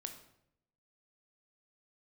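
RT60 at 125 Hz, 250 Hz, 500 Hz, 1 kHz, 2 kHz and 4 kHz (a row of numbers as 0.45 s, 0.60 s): 1.0 s, 0.90 s, 0.80 s, 0.65 s, 0.60 s, 0.55 s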